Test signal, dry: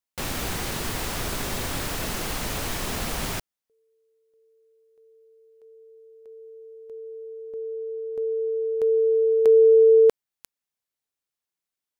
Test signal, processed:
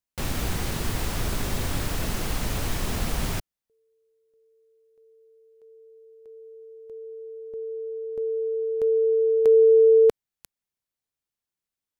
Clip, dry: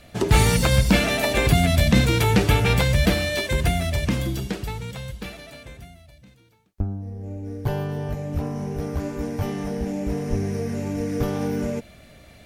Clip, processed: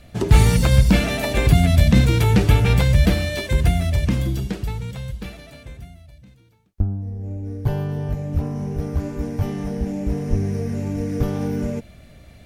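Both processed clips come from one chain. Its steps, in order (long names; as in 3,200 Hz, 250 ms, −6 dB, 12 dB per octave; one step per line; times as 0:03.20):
low-shelf EQ 210 Hz +9 dB
level −2.5 dB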